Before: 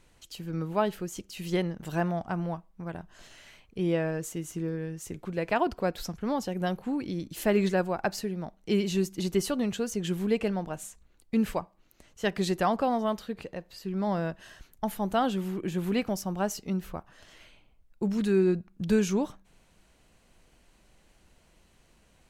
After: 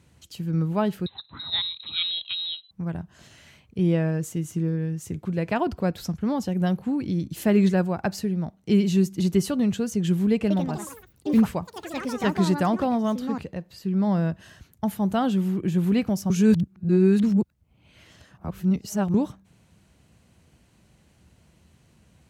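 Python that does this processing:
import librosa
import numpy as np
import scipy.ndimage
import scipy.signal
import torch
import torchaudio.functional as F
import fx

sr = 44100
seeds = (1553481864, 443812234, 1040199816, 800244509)

y = fx.freq_invert(x, sr, carrier_hz=4000, at=(1.06, 2.71))
y = fx.echo_pitch(y, sr, ms=183, semitones=5, count=3, db_per_echo=-6.0, at=(10.32, 14.16))
y = fx.edit(y, sr, fx.reverse_span(start_s=16.3, length_s=2.84), tone=tone)
y = scipy.signal.sosfilt(scipy.signal.butter(4, 70.0, 'highpass', fs=sr, output='sos'), y)
y = fx.bass_treble(y, sr, bass_db=12, treble_db=1)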